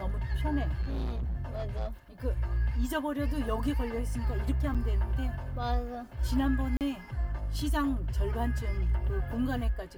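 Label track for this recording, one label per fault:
0.810000	1.870000	clipped -29.5 dBFS
4.740000	4.750000	dropout 6.7 ms
6.770000	6.810000	dropout 38 ms

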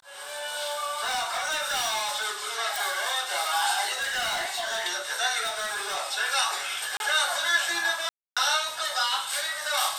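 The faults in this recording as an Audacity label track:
1.010000	2.260000	clipped -24 dBFS
2.760000	2.760000	pop
3.940000	4.860000	clipped -25 dBFS
5.430000	5.970000	clipped -25.5 dBFS
6.970000	7.000000	dropout 31 ms
8.090000	8.370000	dropout 276 ms

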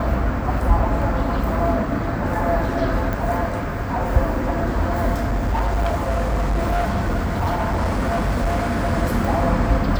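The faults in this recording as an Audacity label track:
3.130000	3.130000	pop
5.190000	8.940000	clipped -16.5 dBFS

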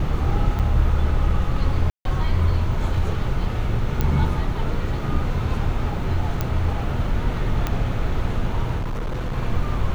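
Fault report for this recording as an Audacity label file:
0.590000	0.600000	dropout 6.9 ms
1.900000	2.050000	dropout 152 ms
4.010000	4.010000	pop -9 dBFS
6.410000	6.410000	pop -9 dBFS
7.670000	7.670000	pop -10 dBFS
8.780000	9.380000	clipped -22 dBFS

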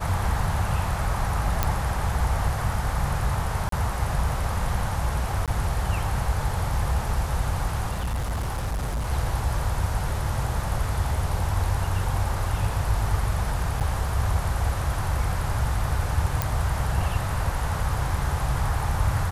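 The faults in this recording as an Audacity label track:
1.630000	1.630000	pop -7 dBFS
3.690000	3.720000	dropout 33 ms
5.460000	5.480000	dropout 17 ms
7.910000	9.110000	clipped -23.5 dBFS
13.800000	13.810000	dropout 8.3 ms
16.420000	16.420000	pop

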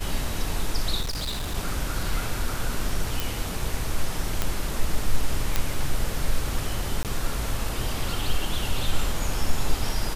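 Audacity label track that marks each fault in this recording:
1.010000	1.540000	clipped -25.5 dBFS
3.200000	3.200000	pop
4.420000	4.420000	pop -8 dBFS
5.560000	5.560000	pop -7 dBFS
7.030000	7.050000	dropout 18 ms

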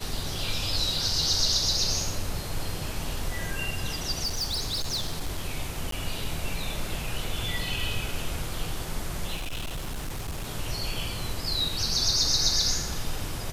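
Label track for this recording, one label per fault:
4.240000	5.420000	clipped -25 dBFS
5.910000	5.920000	dropout 13 ms
9.350000	10.500000	clipped -29 dBFS

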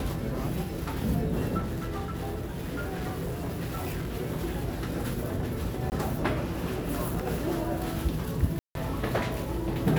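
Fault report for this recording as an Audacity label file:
1.580000	4.130000	clipped -28.5 dBFS
5.900000	5.920000	dropout 19 ms
8.590000	8.750000	dropout 162 ms

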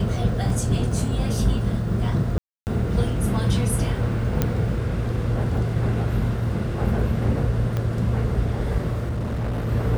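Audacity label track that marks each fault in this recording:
0.500000	0.500000	dropout 2.2 ms
2.380000	2.670000	dropout 289 ms
4.420000	4.420000	pop -7 dBFS
7.770000	7.770000	pop -14 dBFS
9.090000	9.690000	clipped -22.5 dBFS

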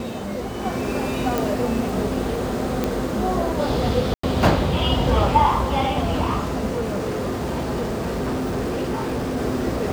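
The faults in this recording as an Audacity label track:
1.380000	1.380000	pop
2.840000	2.840000	pop -8 dBFS
4.140000	4.230000	dropout 94 ms
6.760000	9.380000	clipped -20.5 dBFS

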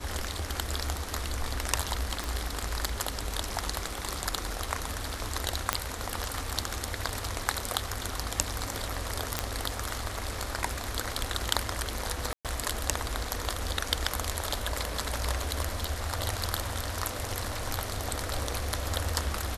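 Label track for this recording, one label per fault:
2.240000	2.240000	pop
5.730000	5.730000	pop -6 dBFS
9.390000	9.390000	pop -9 dBFS
12.330000	12.450000	dropout 117 ms

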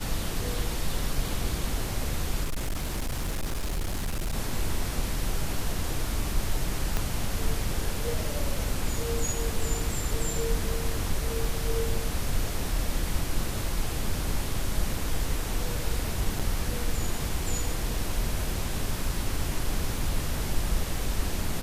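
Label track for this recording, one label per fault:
2.430000	4.340000	clipped -25.5 dBFS
6.970000	6.970000	pop -12 dBFS
11.450000	11.450000	dropout 2.3 ms
16.390000	16.400000	dropout 6 ms

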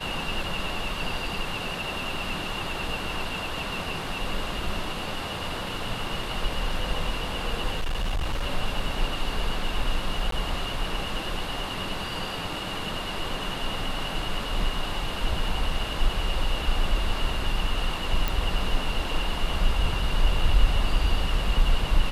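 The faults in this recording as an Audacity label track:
7.760000	8.450000	clipped -23 dBFS
10.310000	10.320000	dropout 13 ms
18.280000	18.280000	pop

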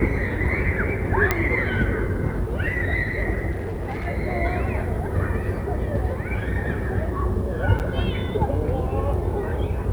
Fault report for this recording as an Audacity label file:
1.310000	1.310000	pop -5 dBFS
3.510000	4.070000	clipped -24 dBFS
7.790000	7.800000	dropout 8.5 ms

